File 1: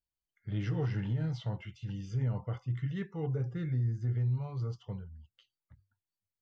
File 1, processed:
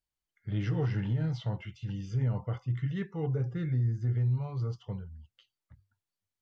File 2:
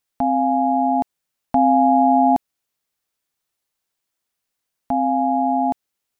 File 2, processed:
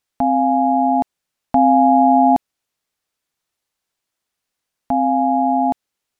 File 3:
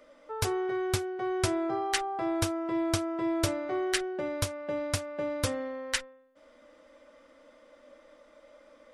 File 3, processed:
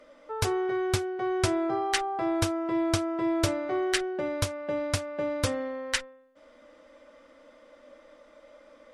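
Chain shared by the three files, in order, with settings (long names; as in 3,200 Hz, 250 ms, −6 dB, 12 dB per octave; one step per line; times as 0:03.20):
high-shelf EQ 12,000 Hz −9.5 dB
level +2.5 dB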